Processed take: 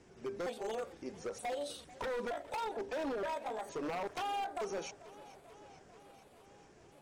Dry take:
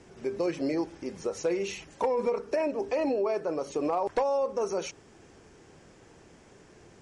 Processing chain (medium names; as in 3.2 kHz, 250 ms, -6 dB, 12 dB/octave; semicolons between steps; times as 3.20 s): pitch shift switched off and on +6.5 st, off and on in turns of 461 ms; wavefolder -25 dBFS; modulated delay 441 ms, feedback 71%, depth 62 cents, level -18.5 dB; trim -7.5 dB